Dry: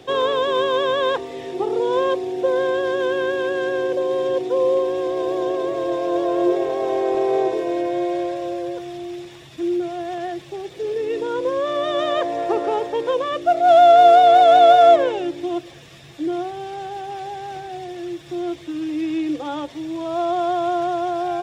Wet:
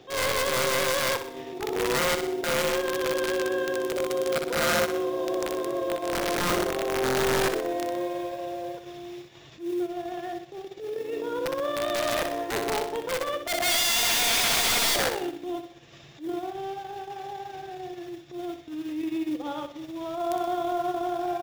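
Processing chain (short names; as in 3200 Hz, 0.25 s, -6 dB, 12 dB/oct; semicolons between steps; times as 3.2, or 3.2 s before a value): downsampling 16000 Hz; wrapped overs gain 13.5 dB; modulation noise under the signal 28 dB; on a send: flutter echo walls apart 10.6 m, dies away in 0.6 s; on the sum: transient shaper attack -12 dB, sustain -8 dB; gain -5.5 dB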